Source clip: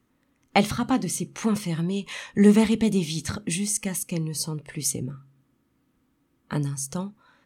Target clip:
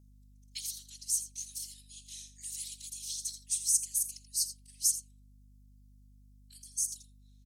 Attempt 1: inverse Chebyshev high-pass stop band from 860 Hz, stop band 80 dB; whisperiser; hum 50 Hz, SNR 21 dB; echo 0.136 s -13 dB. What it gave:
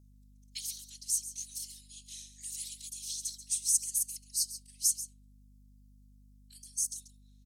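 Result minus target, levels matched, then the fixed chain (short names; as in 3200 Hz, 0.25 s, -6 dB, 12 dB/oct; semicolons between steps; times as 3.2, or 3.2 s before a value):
echo 53 ms late
inverse Chebyshev high-pass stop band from 860 Hz, stop band 80 dB; whisperiser; hum 50 Hz, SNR 21 dB; echo 83 ms -13 dB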